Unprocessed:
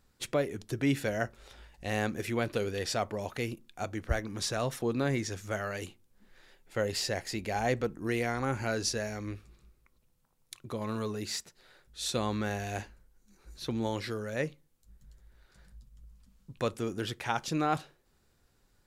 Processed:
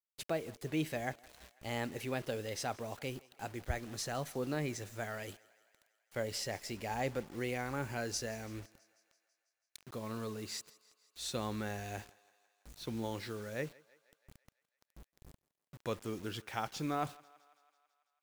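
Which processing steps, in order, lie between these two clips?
gliding tape speed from 113% -> 94%; bit crusher 8-bit; thinning echo 165 ms, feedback 66%, high-pass 400 Hz, level -22 dB; trim -6.5 dB

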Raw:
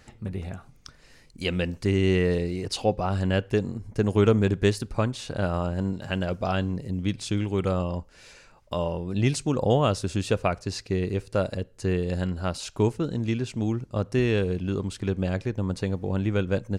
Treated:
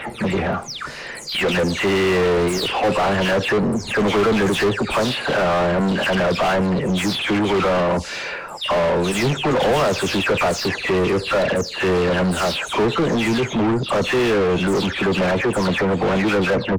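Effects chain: delay that grows with frequency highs early, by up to 235 ms; overdrive pedal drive 36 dB, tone 1.9 kHz, clips at -10.5 dBFS

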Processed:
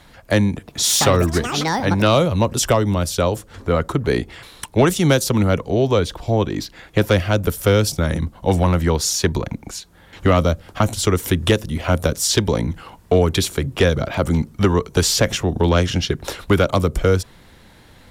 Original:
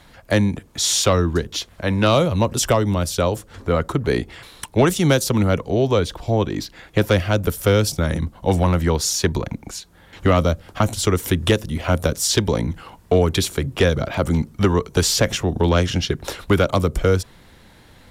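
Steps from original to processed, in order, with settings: 0.56–2.58 s: ever faster or slower copies 113 ms, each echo +7 st, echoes 3, each echo -6 dB; trim +1 dB

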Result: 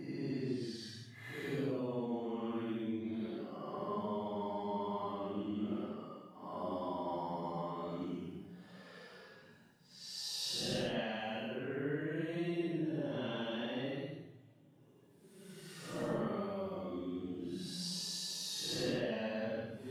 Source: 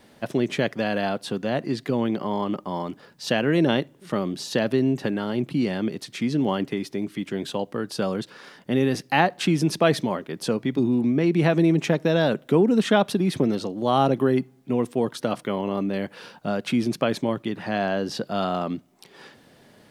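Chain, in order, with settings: coarse spectral quantiser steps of 15 dB; hum notches 60/120/180 Hz; compression, threshold -30 dBFS, peak gain reduction 15.5 dB; Paulstretch 6.5×, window 0.10 s, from 1.65 s; trim -5.5 dB

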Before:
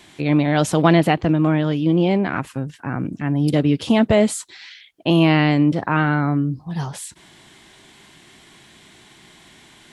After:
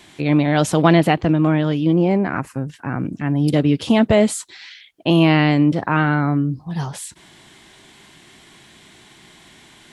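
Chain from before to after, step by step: 1.93–2.67 s: peaking EQ 3.4 kHz -12.5 dB 0.66 oct; trim +1 dB

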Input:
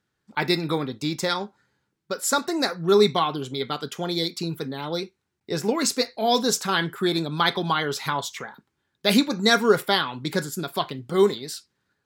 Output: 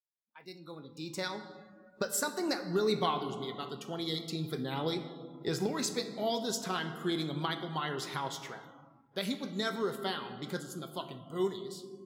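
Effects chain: Doppler pass-by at 3.05 s, 15 m/s, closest 2 m; recorder AGC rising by 17 dB/s; on a send at -8 dB: reverberation RT60 2.6 s, pre-delay 6 ms; on the sum: spectral noise reduction 16 dB; trim -8.5 dB

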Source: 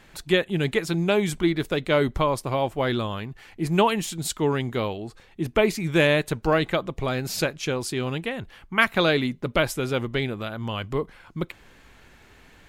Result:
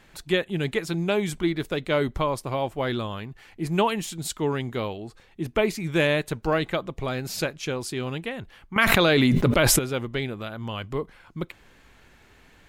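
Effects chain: 8.76–9.79 s: level flattener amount 100%; trim -2.5 dB

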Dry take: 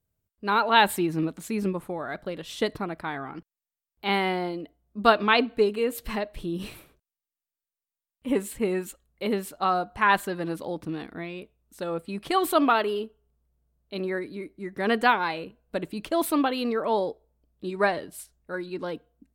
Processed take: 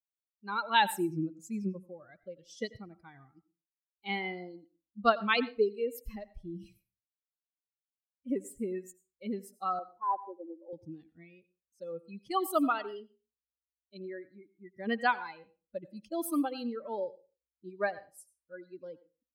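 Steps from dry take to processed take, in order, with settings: expander on every frequency bin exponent 2; 9.79–10.73 s: elliptic band-pass 310–960 Hz, stop band 40 dB; on a send: reverberation RT60 0.30 s, pre-delay 78 ms, DRR 17 dB; on the sum: trim -3.5 dB

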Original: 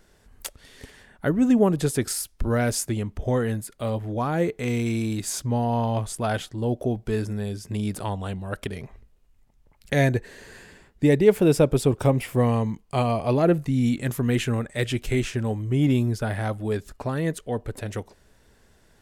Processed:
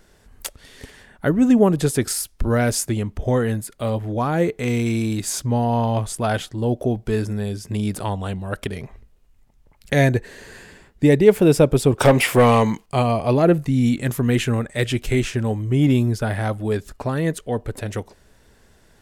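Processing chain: 11.98–12.86 s: overdrive pedal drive 19 dB, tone 7.9 kHz, clips at -7.5 dBFS; trim +4 dB

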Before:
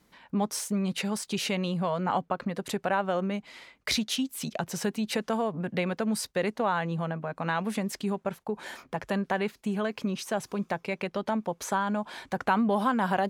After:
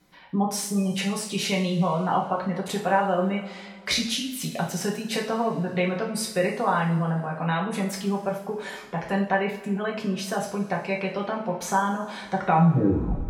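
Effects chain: tape stop on the ending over 0.89 s; spectral gate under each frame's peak -30 dB strong; two-slope reverb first 0.46 s, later 2.5 s, from -18 dB, DRR -2 dB

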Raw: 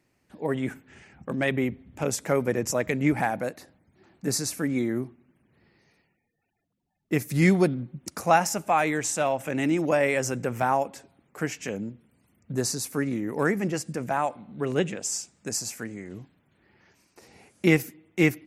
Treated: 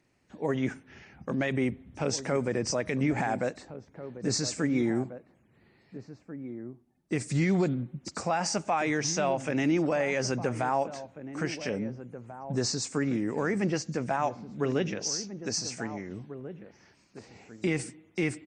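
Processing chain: knee-point frequency compression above 3.8 kHz 1.5:1; peak limiter -18 dBFS, peak gain reduction 11 dB; echo from a far wall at 290 m, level -12 dB

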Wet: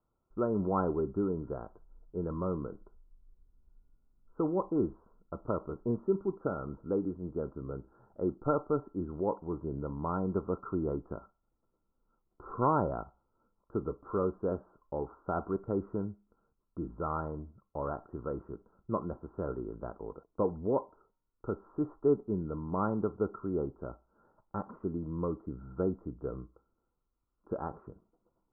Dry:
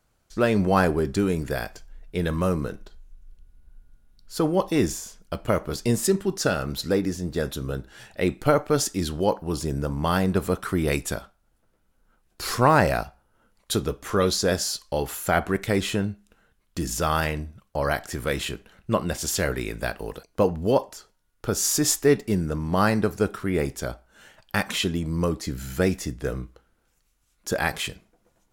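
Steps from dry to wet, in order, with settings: rippled Chebyshev low-pass 1.4 kHz, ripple 6 dB; trim -6.5 dB

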